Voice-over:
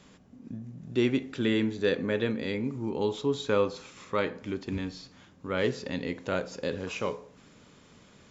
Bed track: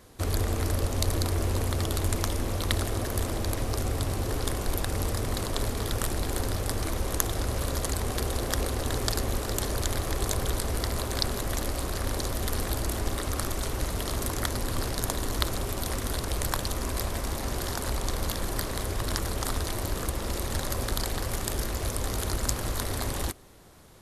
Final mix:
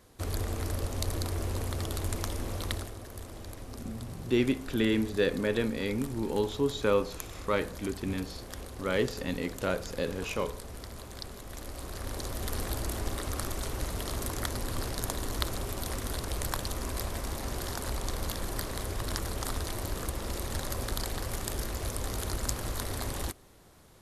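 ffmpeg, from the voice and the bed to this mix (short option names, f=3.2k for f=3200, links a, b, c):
-filter_complex "[0:a]adelay=3350,volume=-0.5dB[a];[1:a]volume=4.5dB,afade=t=out:st=2.65:d=0.3:silence=0.375837,afade=t=in:st=11.46:d=1.15:silence=0.316228[b];[a][b]amix=inputs=2:normalize=0"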